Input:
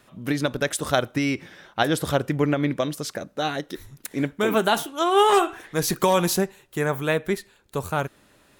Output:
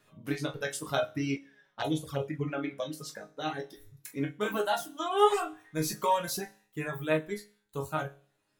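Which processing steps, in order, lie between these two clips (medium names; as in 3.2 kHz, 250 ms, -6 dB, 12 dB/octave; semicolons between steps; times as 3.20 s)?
chord resonator G#2 sus4, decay 0.48 s; reverb removal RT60 1.9 s; 1.36–2.48 s: touch-sensitive flanger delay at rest 6.1 ms, full sweep at -35.5 dBFS; trim +8 dB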